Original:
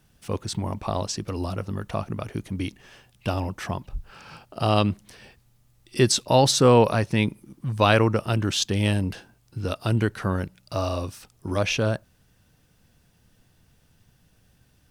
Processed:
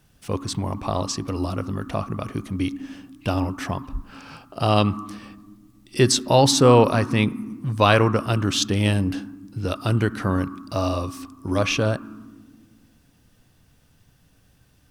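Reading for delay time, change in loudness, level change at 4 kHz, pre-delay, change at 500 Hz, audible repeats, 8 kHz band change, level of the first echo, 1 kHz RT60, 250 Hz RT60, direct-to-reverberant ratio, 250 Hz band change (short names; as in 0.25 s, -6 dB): none, +2.0 dB, +2.0 dB, 3 ms, +2.0 dB, none, +2.0 dB, none, 1.2 s, 2.4 s, 11.5 dB, +3.5 dB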